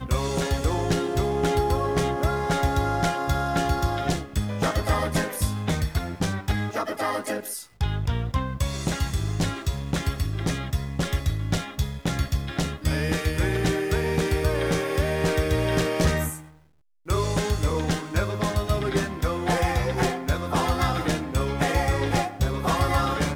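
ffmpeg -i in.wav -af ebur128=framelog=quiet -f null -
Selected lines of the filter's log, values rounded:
Integrated loudness:
  I:         -25.6 LUFS
  Threshold: -35.7 LUFS
Loudness range:
  LRA:         3.4 LU
  Threshold: -45.9 LUFS
  LRA low:   -27.9 LUFS
  LRA high:  -24.5 LUFS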